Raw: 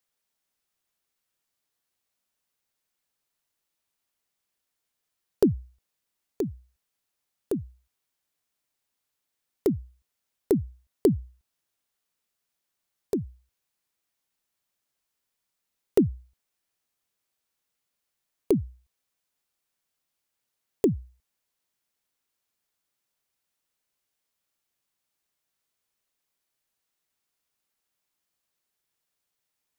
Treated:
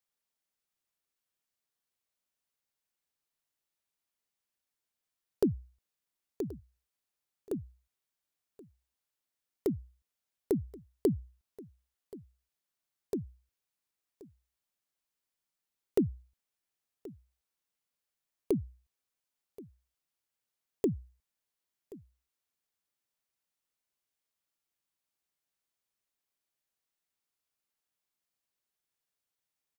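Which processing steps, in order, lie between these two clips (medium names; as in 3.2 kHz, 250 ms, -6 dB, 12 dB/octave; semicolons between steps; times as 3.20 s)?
delay 1078 ms -19.5 dB; trim -7 dB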